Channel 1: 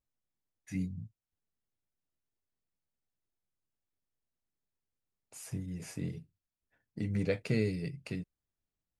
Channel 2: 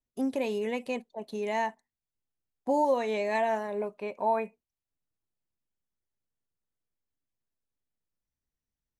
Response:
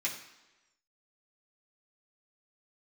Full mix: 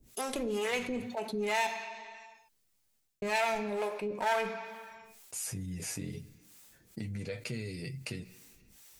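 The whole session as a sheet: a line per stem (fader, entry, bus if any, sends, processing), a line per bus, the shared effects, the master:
−5.5 dB, 0.00 s, send −23.5 dB, noise gate with hold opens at −57 dBFS; downward compressor 4 to 1, threshold −38 dBFS, peak gain reduction 11.5 dB; flanger 0.26 Hz, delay 8 ms, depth 2.2 ms, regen +28%; automatic ducking −11 dB, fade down 0.25 s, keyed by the second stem
−1.5 dB, 0.00 s, muted 0:01.67–0:03.22, send −8 dB, asymmetric clip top −34 dBFS; two-band tremolo in antiphase 2.2 Hz, depth 100%, crossover 420 Hz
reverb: on, RT60 1.1 s, pre-delay 3 ms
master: high-shelf EQ 2,900 Hz +9.5 dB; envelope flattener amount 50%

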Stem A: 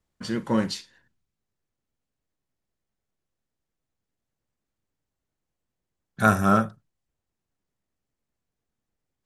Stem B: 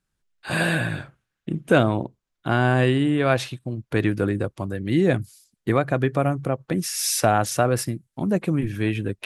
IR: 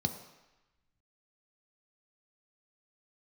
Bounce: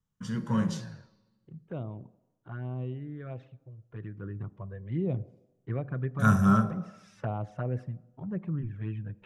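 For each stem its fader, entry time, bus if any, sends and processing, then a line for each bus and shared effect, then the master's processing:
−6.5 dB, 0.00 s, send −8.5 dB, no processing
0:04.13 −18.5 dB → 0:04.42 −11 dB, 0.00 s, send −17 dB, low-pass filter 1,600 Hz 12 dB per octave; flanger swept by the level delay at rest 4 ms, full sweep at −14.5 dBFS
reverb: on, RT60 1.0 s, pre-delay 3 ms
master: no processing

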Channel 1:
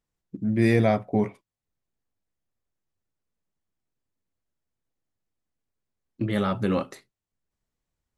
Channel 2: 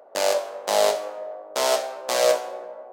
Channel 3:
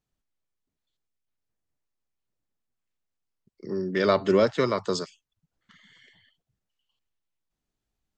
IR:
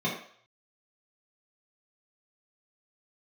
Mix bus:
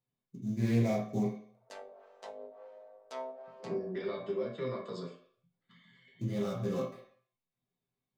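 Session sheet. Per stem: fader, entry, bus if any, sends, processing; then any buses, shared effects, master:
−10.5 dB, 0.00 s, send −3.5 dB, sample-rate reduction 6,600 Hz, jitter 20%
−13.5 dB, 1.55 s, send −22 dB, treble cut that deepens with the level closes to 400 Hz, closed at −17 dBFS; comb filter 4.5 ms, depth 58%
−1.5 dB, 0.00 s, send −6.5 dB, high-pass filter 110 Hz; parametric band 6,100 Hz −14.5 dB 0.32 octaves; downward compressor 12 to 1, threshold −30 dBFS, peak gain reduction 15.5 dB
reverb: on, RT60 0.55 s, pre-delay 3 ms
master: tuned comb filter 130 Hz, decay 0.22 s, harmonics all, mix 80%; highs frequency-modulated by the lows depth 0.16 ms

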